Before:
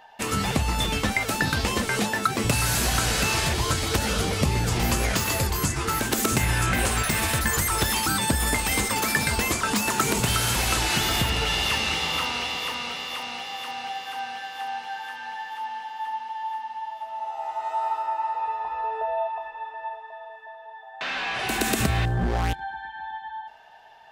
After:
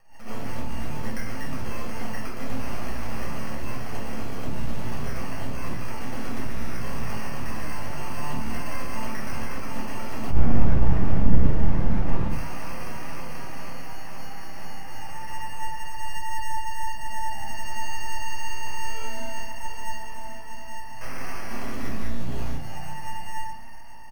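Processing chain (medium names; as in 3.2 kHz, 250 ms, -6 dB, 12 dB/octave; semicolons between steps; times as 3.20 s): doubling 27 ms -3 dB; compression 4:1, threshold -31 dBFS, peak gain reduction 13 dB; rippled EQ curve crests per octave 0.99, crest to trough 10 dB; frequency-shifting echo 359 ms, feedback 44%, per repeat +31 Hz, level -12 dB; sample-and-hold 12×; 10.30–12.30 s: tilt EQ -4.5 dB/octave; half-wave rectifier; simulated room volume 510 m³, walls furnished, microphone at 6.4 m; attacks held to a fixed rise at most 130 dB/s; trim -9.5 dB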